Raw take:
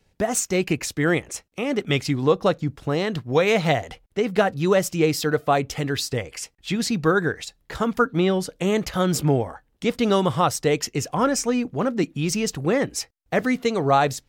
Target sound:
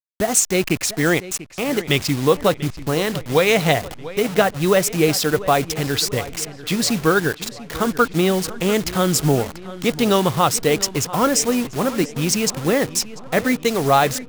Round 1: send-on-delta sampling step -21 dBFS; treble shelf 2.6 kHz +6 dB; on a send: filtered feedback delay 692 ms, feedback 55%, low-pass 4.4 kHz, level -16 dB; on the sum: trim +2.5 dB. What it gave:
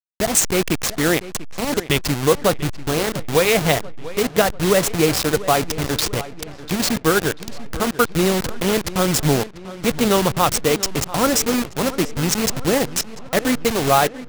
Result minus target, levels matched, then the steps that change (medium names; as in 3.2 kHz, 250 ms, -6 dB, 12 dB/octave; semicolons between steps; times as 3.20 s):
send-on-delta sampling: distortion +10 dB
change: send-on-delta sampling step -30.5 dBFS